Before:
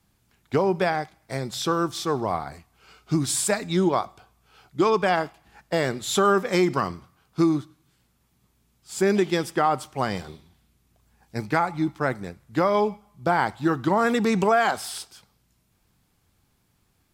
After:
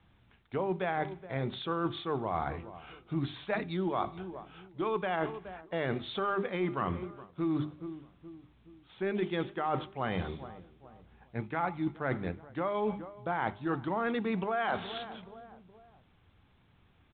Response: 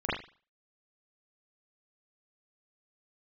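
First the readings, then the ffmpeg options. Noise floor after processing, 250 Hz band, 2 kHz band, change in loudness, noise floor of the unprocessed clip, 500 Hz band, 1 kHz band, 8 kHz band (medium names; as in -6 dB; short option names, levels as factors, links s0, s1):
-65 dBFS, -9.5 dB, -9.0 dB, -10.0 dB, -68 dBFS, -10.0 dB, -9.5 dB, under -40 dB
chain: -filter_complex "[0:a]asplit=2[s0][s1];[s1]aeval=exprs='clip(val(0),-1,0.119)':c=same,volume=0.266[s2];[s0][s2]amix=inputs=2:normalize=0,equalizer=f=77:t=o:w=0.75:g=3,bandreject=f=50:t=h:w=6,bandreject=f=100:t=h:w=6,bandreject=f=150:t=h:w=6,bandreject=f=200:t=h:w=6,bandreject=f=250:t=h:w=6,bandreject=f=300:t=h:w=6,bandreject=f=350:t=h:w=6,bandreject=f=400:t=h:w=6,asplit=2[s3][s4];[s4]adelay=422,lowpass=f=1100:p=1,volume=0.075,asplit=2[s5][s6];[s6]adelay=422,lowpass=f=1100:p=1,volume=0.44,asplit=2[s7][s8];[s8]adelay=422,lowpass=f=1100:p=1,volume=0.44[s9];[s3][s5][s7][s9]amix=inputs=4:normalize=0,areverse,acompressor=threshold=0.0355:ratio=8,areverse" -ar 8000 -c:a pcm_mulaw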